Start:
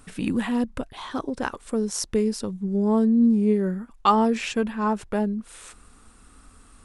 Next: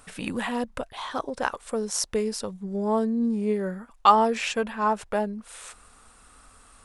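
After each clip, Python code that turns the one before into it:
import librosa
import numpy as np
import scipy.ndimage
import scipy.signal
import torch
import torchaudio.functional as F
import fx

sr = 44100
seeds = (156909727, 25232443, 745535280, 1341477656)

y = fx.low_shelf_res(x, sr, hz=430.0, db=-7.0, q=1.5)
y = y * librosa.db_to_amplitude(1.5)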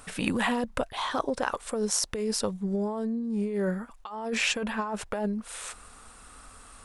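y = fx.over_compress(x, sr, threshold_db=-29.0, ratio=-1.0)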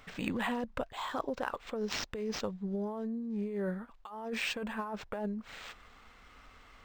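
y = np.interp(np.arange(len(x)), np.arange(len(x))[::4], x[::4])
y = y * librosa.db_to_amplitude(-6.5)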